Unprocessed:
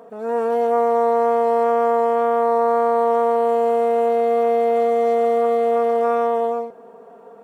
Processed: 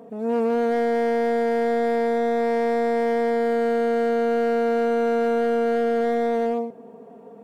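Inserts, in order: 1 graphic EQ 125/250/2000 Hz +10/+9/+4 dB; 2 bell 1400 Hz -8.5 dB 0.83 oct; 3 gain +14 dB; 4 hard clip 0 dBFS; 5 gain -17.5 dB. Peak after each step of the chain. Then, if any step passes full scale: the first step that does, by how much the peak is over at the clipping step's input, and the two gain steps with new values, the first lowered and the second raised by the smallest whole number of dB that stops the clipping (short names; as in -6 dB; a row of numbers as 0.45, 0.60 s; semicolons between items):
-5.5, -7.0, +7.0, 0.0, -17.5 dBFS; step 3, 7.0 dB; step 3 +7 dB, step 5 -10.5 dB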